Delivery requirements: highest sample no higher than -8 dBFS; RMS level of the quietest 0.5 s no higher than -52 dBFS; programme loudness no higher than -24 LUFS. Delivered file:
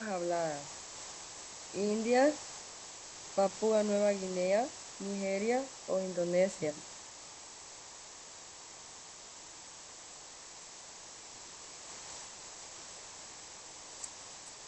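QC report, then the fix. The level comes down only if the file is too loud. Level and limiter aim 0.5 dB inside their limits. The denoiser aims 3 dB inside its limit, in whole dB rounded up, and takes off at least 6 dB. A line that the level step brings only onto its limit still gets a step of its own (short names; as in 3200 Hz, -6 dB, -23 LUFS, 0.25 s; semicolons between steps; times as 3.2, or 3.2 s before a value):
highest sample -17.0 dBFS: OK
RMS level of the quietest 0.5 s -51 dBFS: fail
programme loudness -35.5 LUFS: OK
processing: denoiser 6 dB, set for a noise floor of -51 dBFS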